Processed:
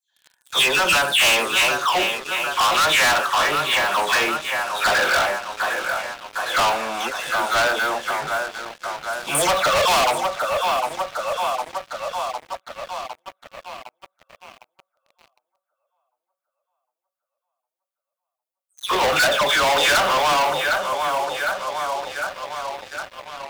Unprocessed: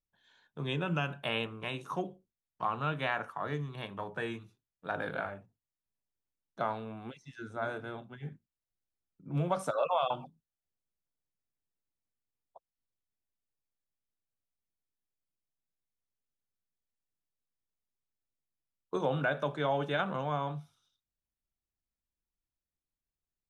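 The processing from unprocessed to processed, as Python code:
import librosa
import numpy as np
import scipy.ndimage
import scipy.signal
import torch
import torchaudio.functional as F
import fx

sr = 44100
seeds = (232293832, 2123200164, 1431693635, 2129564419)

p1 = fx.spec_delay(x, sr, highs='early', ms=246)
p2 = scipy.signal.sosfilt(scipy.signal.butter(2, 700.0, 'highpass', fs=sr, output='sos'), p1)
p3 = fx.peak_eq(p2, sr, hz=5600.0, db=-4.0, octaves=1.8)
p4 = fx.echo_tape(p3, sr, ms=756, feedback_pct=65, wet_db=-11.0, lp_hz=5300.0, drive_db=20.0, wow_cents=17)
p5 = (np.mod(10.0 ** (28.5 / 20.0) * p4 + 1.0, 2.0) - 1.0) / 10.0 ** (28.5 / 20.0)
p6 = p4 + F.gain(torch.from_numpy(p5), -4.0).numpy()
p7 = fx.leveller(p6, sr, passes=5)
p8 = fx.high_shelf(p7, sr, hz=2300.0, db=7.5)
y = F.gain(torch.from_numpy(p8), 3.0).numpy()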